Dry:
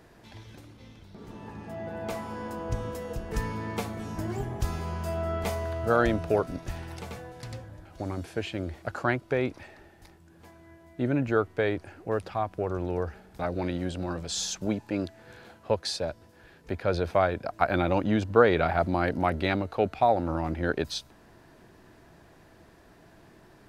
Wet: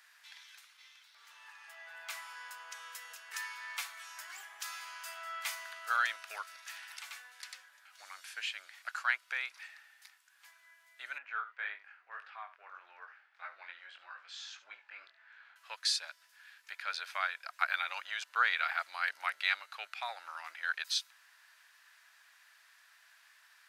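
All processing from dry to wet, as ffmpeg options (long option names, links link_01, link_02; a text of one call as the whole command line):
ffmpeg -i in.wav -filter_complex "[0:a]asettb=1/sr,asplit=3[link_01][link_02][link_03];[link_01]atrim=end=11.184[link_04];[link_02]atrim=start=11.18:end=15.56,asetpts=PTS-STARTPTS,afade=type=in:duration=0.004:curve=qsin,afade=type=out:start_time=4.376:duration=0.004:curve=qsin,lowpass=2100,aecho=1:1:71:0.2,atrim=end_sample=193158,flanger=delay=19:depth=5.1:speed=1.7[link_05];[link_03]atrim=start=15.556[link_06];[link_04][link_05]acrossfade=duration=0.004:curve1=hsin:curve2=qsin[link_07];[link_07][link_06]acrossfade=duration=0.004:curve1=qsin:curve2=hsin,highpass=frequency=1400:width=0.5412,highpass=frequency=1400:width=1.3066,acontrast=80,volume=-5.5dB" out.wav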